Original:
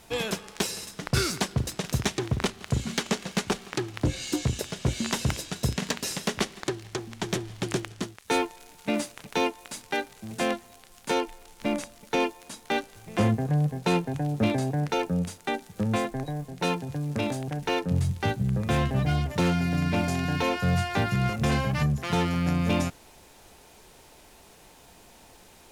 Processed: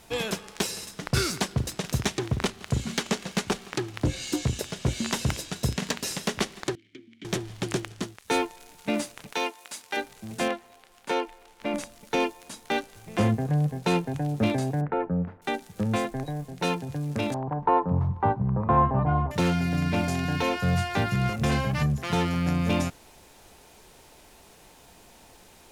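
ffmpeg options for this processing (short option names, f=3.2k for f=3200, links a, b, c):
-filter_complex "[0:a]asettb=1/sr,asplit=3[a][b][c];[a]atrim=end=6.754[d];[b]atrim=start=6.75:end=7.25,asetpts=PTS-STARTPTS,afade=t=in:d=0.004:c=qsin,afade=t=out:st=0.496:d=0.004:c=qsin,asplit=3[e][f][g];[e]bandpass=f=270:t=q:w=8,volume=0dB[h];[f]bandpass=f=2.29k:t=q:w=8,volume=-6dB[i];[g]bandpass=f=3.01k:t=q:w=8,volume=-9dB[j];[h][i][j]amix=inputs=3:normalize=0[k];[c]atrim=start=7.246[l];[d][k]acrossfade=d=0.004:c1=hsin:c2=qsin[m];[m][l]acrossfade=d=0.004:c1=qsin:c2=hsin,asettb=1/sr,asplit=3[n][o][p];[n]atrim=end=9.334[q];[o]atrim=start=9.33:end=9.97,asetpts=PTS-STARTPTS,afade=t=in:d=0.004:c=qsin,afade=t=out:st=0.636:d=0.004:c=qsin,highpass=f=680:p=1[r];[p]atrim=start=9.966[s];[q][r]acrossfade=d=0.004:c1=hsin:c2=qsin[t];[t][s]acrossfade=d=0.004:c1=qsin:c2=hsin,asettb=1/sr,asplit=3[u][v][w];[u]atrim=end=10.484[x];[v]atrim=start=10.48:end=11.74,asetpts=PTS-STARTPTS,afade=t=in:d=0.004:c=qsin,afade=t=out:st=1.256:d=0.004:c=qsin,bass=f=250:g=-9,treble=f=4k:g=-8[y];[w]atrim=start=11.736[z];[x][y]acrossfade=d=0.004:c1=hsin:c2=qsin[aa];[aa][z]acrossfade=d=0.004:c1=qsin:c2=hsin,asettb=1/sr,asplit=3[ab][ac][ad];[ab]atrim=end=14.814[ae];[ac]atrim=start=14.81:end=15.42,asetpts=PTS-STARTPTS,afade=t=in:d=0.004:c=qsin,afade=t=out:st=0.606:d=0.004:c=qsin,lowpass=f=1.7k:w=0.5412,lowpass=f=1.7k:w=1.3066[af];[ad]atrim=start=15.416[ag];[ae][af]acrossfade=d=0.004:c1=hsin:c2=qsin[ah];[ah][ag]acrossfade=d=0.004:c1=qsin:c2=hsin,asettb=1/sr,asplit=3[ai][aj][ak];[ai]atrim=end=17.344[al];[aj]atrim=start=17.34:end=19.31,asetpts=PTS-STARTPTS,afade=t=in:d=0.004:c=qsin,afade=t=out:st=1.966:d=0.004:c=qsin,lowpass=f=1k:t=q:w=6[am];[ak]atrim=start=19.306[an];[al][am]acrossfade=d=0.004:c1=hsin:c2=qsin[ao];[ao][an]acrossfade=d=0.004:c1=qsin:c2=hsin"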